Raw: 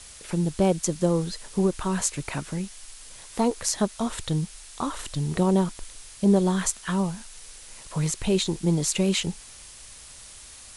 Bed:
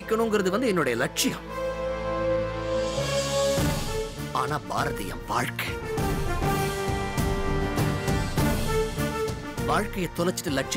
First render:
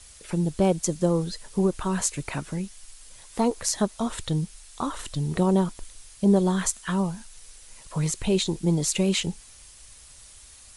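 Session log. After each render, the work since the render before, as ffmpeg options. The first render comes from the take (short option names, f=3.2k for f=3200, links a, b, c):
-af "afftdn=nr=6:nf=-46"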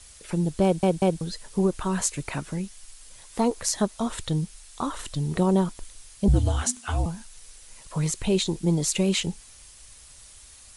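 -filter_complex "[0:a]asettb=1/sr,asplit=3[a][b][c];[a]atrim=end=6.284[d];[b]atrim=start=6.28:end=7.06,asetpts=PTS-STARTPTS,afade=t=in:d=0.004:c=qsin,afade=t=out:st=0.776:d=0.004:c=qsin,afreqshift=-260[e];[c]atrim=start=7.056[f];[d][e]acrossfade=d=0.004:c1=hsin:c2=qsin[g];[g][f]acrossfade=d=0.004:c1=qsin:c2=hsin,asplit=4[h][i][j][k];[h]atrim=end=0.832[l];[i]atrim=start=0.638:end=0.832[m];[j]atrim=start=0.638:end=0.832[n];[k]atrim=start=1.208[o];[l][m]acrossfade=d=0.004:c1=hsin:c2=hsin[p];[p][n]acrossfade=d=0.004:c1=hsin:c2=hsin[q];[q][o]acrossfade=d=0.004:c1=hsin:c2=hsin"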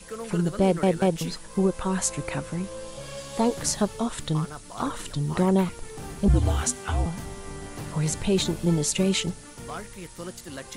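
-filter_complex "[1:a]volume=-12dB[a];[0:a][a]amix=inputs=2:normalize=0"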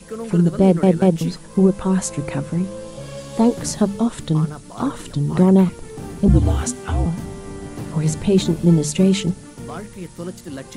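-af "equalizer=f=190:t=o:w=2.9:g=10,bandreject=f=50:t=h:w=6,bandreject=f=100:t=h:w=6,bandreject=f=150:t=h:w=6,bandreject=f=200:t=h:w=6"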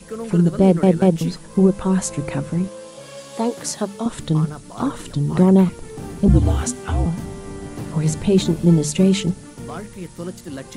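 -filter_complex "[0:a]asettb=1/sr,asplit=3[a][b][c];[a]atrim=end=2.684[d];[b]atrim=start=2.68:end=4.06,asetpts=PTS-STARTPTS,afade=t=in:d=0.004:c=qsin,afade=t=out:st=1.376:d=0.004:c=qsin,highpass=f=540:p=1[e];[c]atrim=start=4.056[f];[d][e]acrossfade=d=0.004:c1=hsin:c2=qsin[g];[g][f]acrossfade=d=0.004:c1=qsin:c2=hsin"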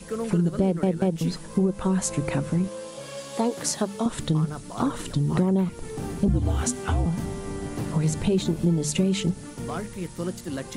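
-af "acompressor=threshold=-20dB:ratio=4"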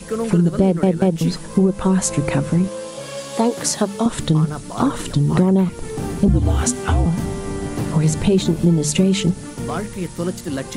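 -af "volume=7dB,alimiter=limit=-1dB:level=0:latency=1"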